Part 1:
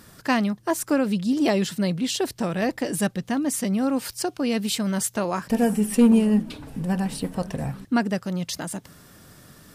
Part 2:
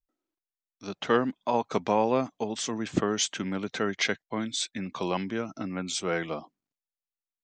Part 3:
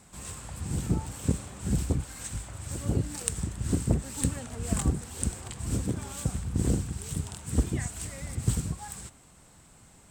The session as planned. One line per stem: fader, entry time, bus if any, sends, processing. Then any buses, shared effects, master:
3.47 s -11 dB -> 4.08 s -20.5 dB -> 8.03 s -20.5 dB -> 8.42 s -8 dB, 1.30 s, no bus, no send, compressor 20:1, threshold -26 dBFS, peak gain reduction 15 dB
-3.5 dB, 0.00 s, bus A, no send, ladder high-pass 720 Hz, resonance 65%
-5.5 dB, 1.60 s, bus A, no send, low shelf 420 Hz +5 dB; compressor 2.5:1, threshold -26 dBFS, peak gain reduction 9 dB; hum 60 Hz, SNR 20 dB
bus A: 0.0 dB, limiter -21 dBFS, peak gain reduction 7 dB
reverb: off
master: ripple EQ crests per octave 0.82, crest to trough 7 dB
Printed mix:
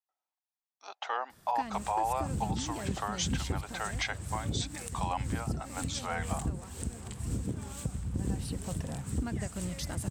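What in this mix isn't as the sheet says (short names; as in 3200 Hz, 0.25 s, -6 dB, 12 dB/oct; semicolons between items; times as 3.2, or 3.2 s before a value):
stem 2 -3.5 dB -> +5.0 dB; master: missing ripple EQ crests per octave 0.82, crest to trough 7 dB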